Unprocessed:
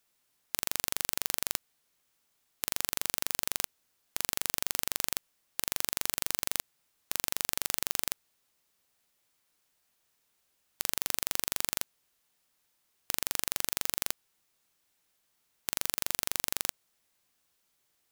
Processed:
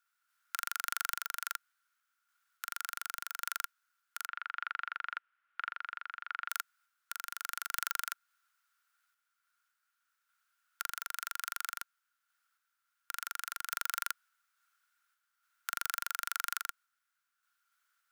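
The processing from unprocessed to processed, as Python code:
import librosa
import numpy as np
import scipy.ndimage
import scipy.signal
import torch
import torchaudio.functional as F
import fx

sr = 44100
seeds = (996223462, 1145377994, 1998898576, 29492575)

y = fx.lowpass(x, sr, hz=2900.0, slope=24, at=(4.26, 6.49))
y = fx.tremolo_random(y, sr, seeds[0], hz=3.5, depth_pct=55)
y = fx.highpass_res(y, sr, hz=1400.0, q=13.0)
y = y * 10.0 ** (-6.0 / 20.0)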